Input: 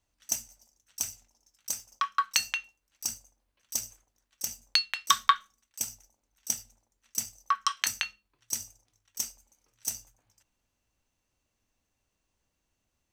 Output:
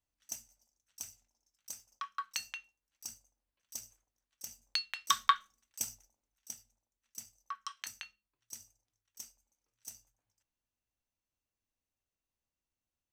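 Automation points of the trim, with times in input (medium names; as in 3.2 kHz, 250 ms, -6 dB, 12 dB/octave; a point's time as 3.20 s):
4.43 s -12 dB
5.34 s -4 dB
5.88 s -4 dB
6.52 s -15 dB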